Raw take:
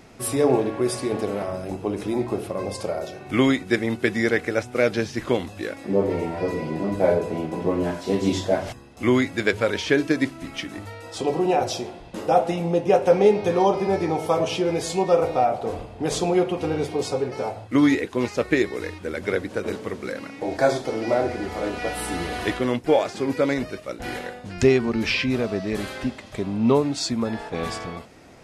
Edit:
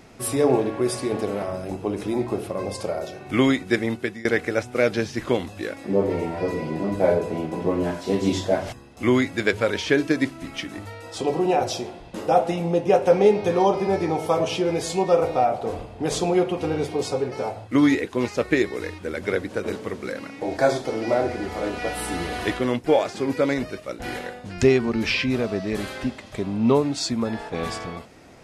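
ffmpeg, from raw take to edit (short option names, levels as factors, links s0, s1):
-filter_complex "[0:a]asplit=2[s0][s1];[s0]atrim=end=4.25,asetpts=PTS-STARTPTS,afade=t=out:st=3.87:d=0.38:silence=0.0794328[s2];[s1]atrim=start=4.25,asetpts=PTS-STARTPTS,afade=t=in:d=0.004:c=hsin:silence=0.0794328[s3];[s2][s3]concat=n=2:v=0:a=1"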